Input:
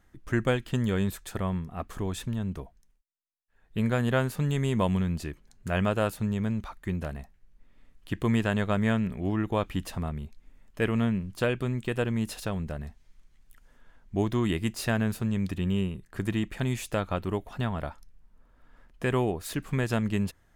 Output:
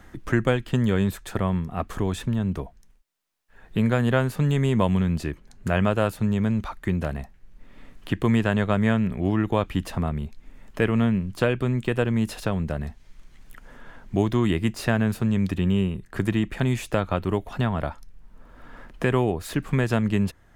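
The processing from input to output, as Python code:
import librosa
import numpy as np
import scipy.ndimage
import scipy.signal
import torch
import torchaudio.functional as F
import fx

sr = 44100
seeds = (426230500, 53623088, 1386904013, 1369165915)

y = fx.high_shelf(x, sr, hz=4200.0, db=-5.5)
y = fx.band_squash(y, sr, depth_pct=40)
y = F.gain(torch.from_numpy(y), 5.0).numpy()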